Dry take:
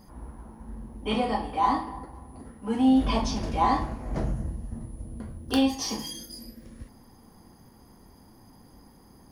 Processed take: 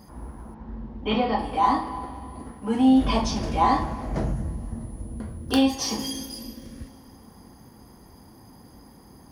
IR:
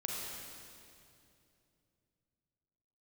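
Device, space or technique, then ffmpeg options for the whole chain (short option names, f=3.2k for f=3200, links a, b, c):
ducked reverb: -filter_complex "[0:a]asplit=3[a][b][c];[1:a]atrim=start_sample=2205[d];[b][d]afir=irnorm=-1:irlink=0[e];[c]apad=whole_len=410974[f];[e][f]sidechaincompress=threshold=-34dB:ratio=8:attack=16:release=151,volume=-11.5dB[g];[a][g]amix=inputs=2:normalize=0,asettb=1/sr,asplit=3[h][i][j];[h]atrim=end=0.544[k];[i]atrim=start=0.54:end=1.39,asetpts=PTS-STARTPTS,afade=t=in:d=0.004:c=qsin,afade=t=out:st=0.846:d=0.004:c=qsin,lowpass=f=4.7k:w=0.5412,lowpass=f=4.7k:w=1.3066[l];[j]atrim=start=1.386[m];[k][l]acrossfade=d=0.004:c1=hsin:c2=qsin[n];[n][m]acrossfade=d=0.004:c1=qsin:c2=hsin,highpass=42,volume=2.5dB"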